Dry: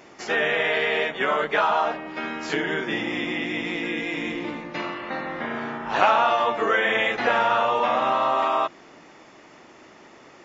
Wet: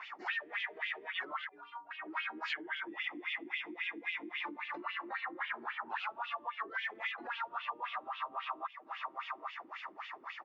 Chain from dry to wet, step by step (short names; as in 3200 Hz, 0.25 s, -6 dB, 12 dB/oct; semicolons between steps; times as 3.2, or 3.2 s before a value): feedback echo 0.84 s, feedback 31%, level -21 dB; overdrive pedal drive 18 dB, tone 3000 Hz, clips at -4 dBFS; wah 3.7 Hz 300–3100 Hz, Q 3.7; vocal rider 0.5 s; dynamic EQ 340 Hz, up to +7 dB, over -43 dBFS, Q 4.9; compressor 8:1, threshold -37 dBFS, peak gain reduction 19 dB; graphic EQ 500/1000/2000/4000 Hz -11/+7/+4/+6 dB; reverb removal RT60 0.56 s; 1.49–1.91 metallic resonator 86 Hz, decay 0.5 s, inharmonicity 0.03; gain -3.5 dB